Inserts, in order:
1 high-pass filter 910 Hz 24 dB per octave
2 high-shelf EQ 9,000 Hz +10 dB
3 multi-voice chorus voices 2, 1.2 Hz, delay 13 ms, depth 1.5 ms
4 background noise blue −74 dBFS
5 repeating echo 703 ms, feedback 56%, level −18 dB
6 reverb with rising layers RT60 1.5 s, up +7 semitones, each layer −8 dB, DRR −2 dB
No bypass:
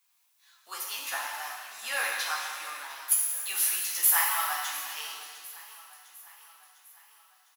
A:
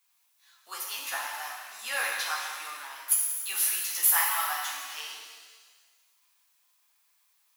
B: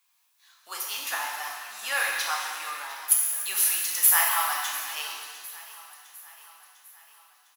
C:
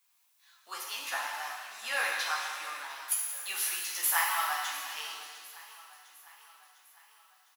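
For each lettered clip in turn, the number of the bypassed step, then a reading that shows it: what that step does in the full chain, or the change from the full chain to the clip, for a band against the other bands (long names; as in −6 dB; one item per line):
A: 5, change in momentary loudness spread −2 LU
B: 3, change in integrated loudness +3.5 LU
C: 2, 8 kHz band −5.5 dB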